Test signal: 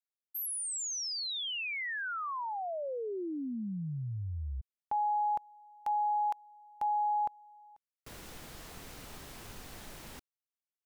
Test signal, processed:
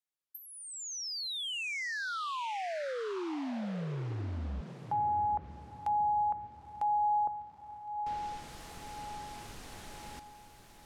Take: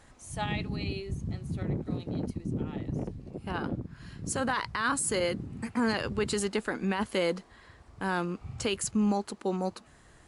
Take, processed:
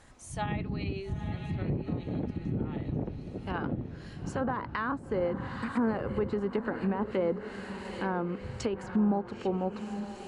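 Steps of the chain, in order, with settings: diffused feedback echo 0.893 s, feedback 43%, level -10 dB; treble ducked by the level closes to 1000 Hz, closed at -25.5 dBFS

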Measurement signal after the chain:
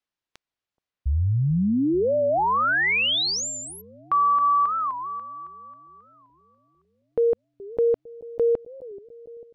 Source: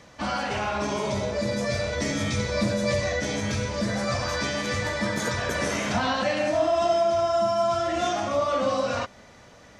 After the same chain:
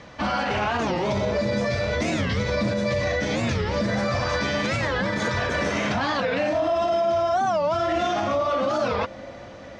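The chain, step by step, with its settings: LPF 4300 Hz 12 dB/oct; limiter -22.5 dBFS; on a send: analogue delay 0.438 s, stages 2048, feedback 70%, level -18.5 dB; on the sum: record warp 45 rpm, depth 250 cents; gain +6.5 dB

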